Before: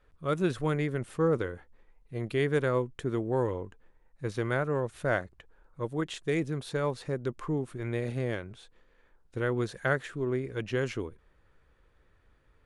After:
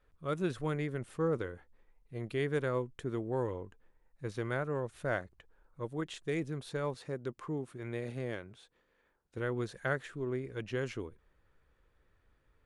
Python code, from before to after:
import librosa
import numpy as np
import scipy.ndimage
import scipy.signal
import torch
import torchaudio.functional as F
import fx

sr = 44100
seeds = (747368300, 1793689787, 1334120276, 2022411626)

y = fx.highpass(x, sr, hz=110.0, slope=6, at=(6.94, 9.38))
y = F.gain(torch.from_numpy(y), -5.5).numpy()